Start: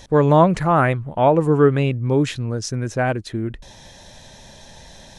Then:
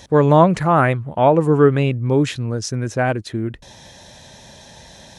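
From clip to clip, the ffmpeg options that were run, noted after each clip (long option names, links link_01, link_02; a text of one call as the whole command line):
ffmpeg -i in.wav -af "highpass=61,volume=1.5dB" out.wav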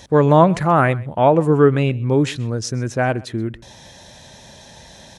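ffmpeg -i in.wav -af "aecho=1:1:129:0.075" out.wav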